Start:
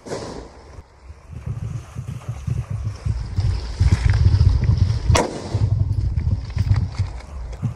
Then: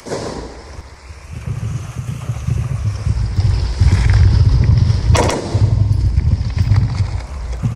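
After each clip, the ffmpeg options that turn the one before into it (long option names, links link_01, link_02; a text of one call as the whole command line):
ffmpeg -i in.wav -filter_complex "[0:a]acrossover=split=240|1500[link_01][link_02][link_03];[link_03]acompressor=mode=upward:threshold=-42dB:ratio=2.5[link_04];[link_01][link_02][link_04]amix=inputs=3:normalize=0,aecho=1:1:69.97|137:0.282|0.398,alimiter=level_in=6.5dB:limit=-1dB:release=50:level=0:latency=1,volume=-1dB" out.wav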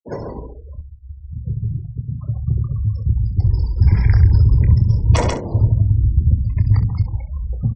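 ffmpeg -i in.wav -filter_complex "[0:a]afftfilt=real='re*gte(hypot(re,im),0.0708)':imag='im*gte(hypot(re,im),0.0708)':win_size=1024:overlap=0.75,lowshelf=frequency=100:gain=9,asplit=2[link_01][link_02];[link_02]aecho=0:1:27|65:0.299|0.178[link_03];[link_01][link_03]amix=inputs=2:normalize=0,volume=-6dB" out.wav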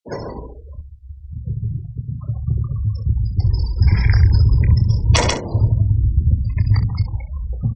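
ffmpeg -i in.wav -af "equalizer=frequency=4200:width_type=o:width=2.6:gain=11.5,volume=-1dB" out.wav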